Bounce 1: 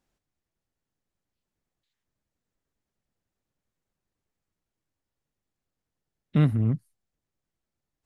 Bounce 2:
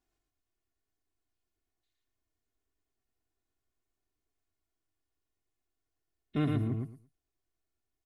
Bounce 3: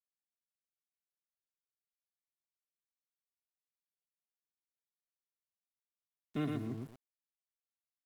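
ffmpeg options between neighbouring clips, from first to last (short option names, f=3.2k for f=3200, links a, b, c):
-af "aecho=1:1:2.8:0.74,aecho=1:1:113|226|339:0.668|0.12|0.0217,volume=-7dB"
-filter_complex "[0:a]acrossover=split=160|630[a][b][c];[a]acompressor=threshold=-43dB:ratio=8[d];[d][b][c]amix=inputs=3:normalize=0,aeval=exprs='val(0)*gte(abs(val(0)),0.00376)':c=same,volume=-4.5dB"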